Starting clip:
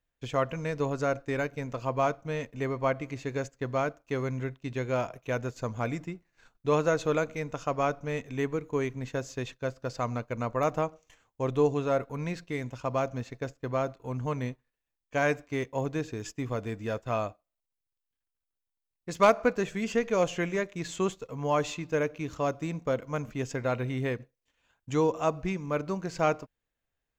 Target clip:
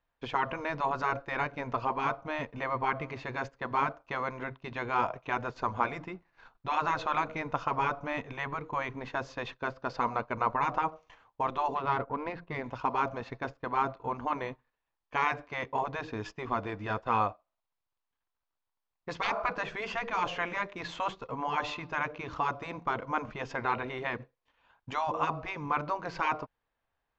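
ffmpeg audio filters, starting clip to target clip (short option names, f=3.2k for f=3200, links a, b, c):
-filter_complex "[0:a]asettb=1/sr,asplit=3[a][b][c];[a]atrim=end=11.754[d];[b]atrim=start=11.75:end=12.64,asetpts=PTS-STARTPTS,afade=t=in:d=0.004:c=qsin,afade=t=out:st=0.886:d=0.004:c=qsin,adynamicsmooth=sensitivity=4:basefreq=1.6k[e];[c]atrim=start=12.636[f];[d][e]acrossfade=d=0.004:c1=hsin:c2=qsin[g];[g][f]acrossfade=d=0.004:c1=qsin:c2=hsin,afftfilt=real='re*lt(hypot(re,im),0.141)':imag='im*lt(hypot(re,im),0.141)':win_size=1024:overlap=0.75,lowpass=f=4.7k:w=0.5412,lowpass=f=4.7k:w=1.3066,equalizer=f=970:t=o:w=1.2:g=11.5"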